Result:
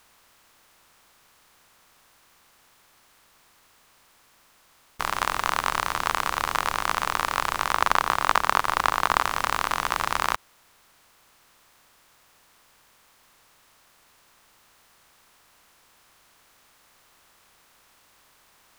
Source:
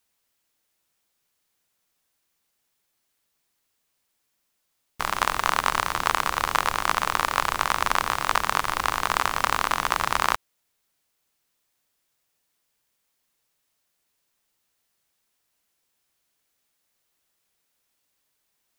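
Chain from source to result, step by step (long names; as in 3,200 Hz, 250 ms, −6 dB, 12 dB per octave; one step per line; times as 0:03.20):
compressor on every frequency bin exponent 0.6
0:07.73–0:09.24: transient designer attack +6 dB, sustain −4 dB
level −4.5 dB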